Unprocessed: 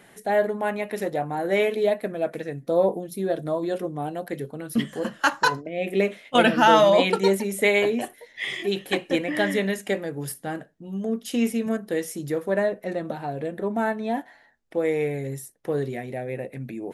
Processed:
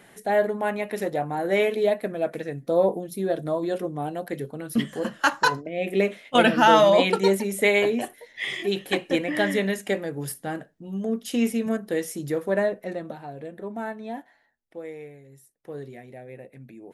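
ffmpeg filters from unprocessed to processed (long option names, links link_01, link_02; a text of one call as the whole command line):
ffmpeg -i in.wav -af "volume=9.5dB,afade=type=out:start_time=12.63:duration=0.6:silence=0.421697,afade=type=out:start_time=14.1:duration=1.17:silence=0.237137,afade=type=in:start_time=15.27:duration=0.5:silence=0.334965" out.wav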